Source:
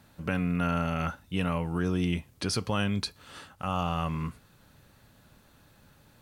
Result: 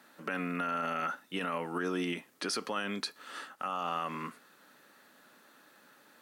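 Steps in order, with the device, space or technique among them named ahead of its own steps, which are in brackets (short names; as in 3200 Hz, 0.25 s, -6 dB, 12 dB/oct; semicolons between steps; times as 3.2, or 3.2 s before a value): laptop speaker (HPF 250 Hz 24 dB/oct; bell 1300 Hz +5.5 dB 0.37 oct; bell 1800 Hz +6.5 dB 0.29 oct; limiter -23.5 dBFS, peak gain reduction 7.5 dB)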